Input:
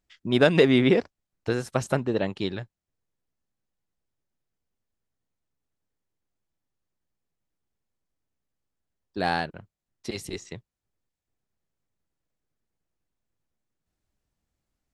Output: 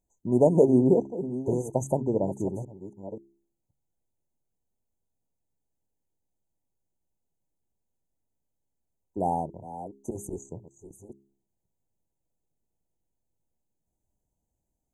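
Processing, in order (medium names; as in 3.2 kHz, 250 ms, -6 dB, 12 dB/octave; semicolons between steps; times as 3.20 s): chunks repeated in reverse 530 ms, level -12 dB; brick-wall FIR band-stop 1–6 kHz; de-hum 67.86 Hz, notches 6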